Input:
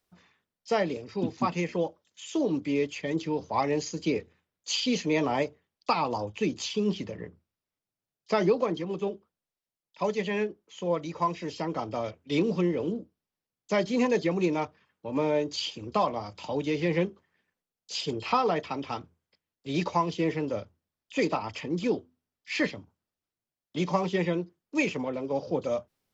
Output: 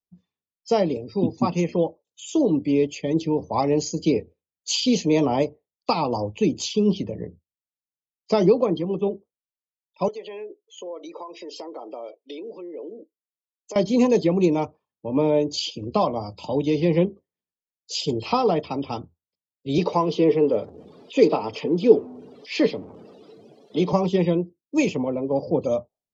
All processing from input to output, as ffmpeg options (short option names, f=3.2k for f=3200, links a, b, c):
-filter_complex "[0:a]asettb=1/sr,asplit=3[a][b][c];[a]atrim=end=10.084[d];[b]atrim=start=10.08:end=13.76,asetpts=PTS-STARTPTS,afade=t=in:d=0.004:c=qsin,afade=t=out:st=3.676:d=0.004:c=qsin,acompressor=threshold=-35dB:ratio=12:attack=3.2:release=140:knee=1:detection=peak,highpass=f=340:w=0.5412,highpass=f=340:w=1.3066[e];[c]atrim=start=13.756[f];[d][e]acrossfade=d=0.004:c1=hsin:c2=qsin[g];[g][f]acrossfade=d=0.004:c1=qsin:c2=hsin,asettb=1/sr,asplit=3[h][i][j];[h]atrim=end=19.784[k];[i]atrim=start=19.78:end=23.93,asetpts=PTS-STARTPTS,afade=t=in:d=0.004:c=qsin,afade=t=out:st=4.146:d=0.004:c=qsin,aeval=exprs='val(0)+0.5*0.01*sgn(val(0))':c=same,highpass=190,lowpass=5.4k,equalizer=f=440:t=o:w=0.21:g=10[l];[j]atrim=start=23.926[m];[k][l]acrossfade=d=0.004:c1=hsin:c2=qsin[n];[n][m]acrossfade=d=0.004:c1=qsin:c2=hsin,afftdn=nr=24:nf=-50,equalizer=f=1.7k:t=o:w=1.2:g=-15,volume=8dB"